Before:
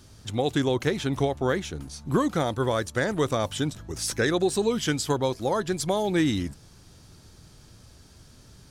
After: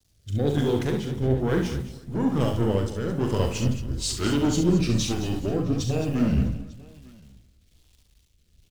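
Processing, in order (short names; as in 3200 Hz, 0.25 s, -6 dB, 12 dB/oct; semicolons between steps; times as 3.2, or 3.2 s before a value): gliding pitch shift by -7.5 st starting unshifted; gate -42 dBFS, range -6 dB; low shelf 290 Hz +11 dB; bit-crush 8-bit; soft clip -18 dBFS, distortion -11 dB; spring tank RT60 1.6 s, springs 46/53 ms, chirp 70 ms, DRR 13 dB; rotary speaker horn 1.1 Hz; tapped delay 41/69/221/490/655/899 ms -7.5/-6.5/-9.5/-20/-19.5/-14.5 dB; three-band expander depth 70%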